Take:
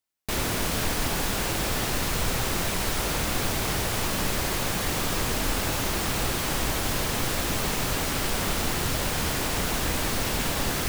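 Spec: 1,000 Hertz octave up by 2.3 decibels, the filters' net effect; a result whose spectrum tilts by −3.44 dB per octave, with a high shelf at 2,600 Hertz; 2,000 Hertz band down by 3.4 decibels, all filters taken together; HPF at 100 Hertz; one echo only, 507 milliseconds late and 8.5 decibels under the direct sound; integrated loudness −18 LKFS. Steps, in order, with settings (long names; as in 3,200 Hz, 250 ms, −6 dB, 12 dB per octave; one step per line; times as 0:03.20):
high-pass filter 100 Hz
parametric band 1,000 Hz +4.5 dB
parametric band 2,000 Hz −4.5 dB
high-shelf EQ 2,600 Hz −3 dB
single-tap delay 507 ms −8.5 dB
level +9.5 dB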